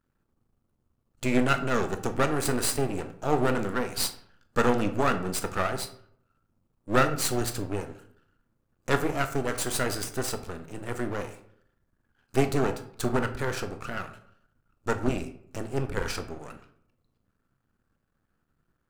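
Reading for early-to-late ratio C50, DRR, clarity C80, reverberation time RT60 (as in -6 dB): 12.0 dB, 8.0 dB, 15.5 dB, 0.65 s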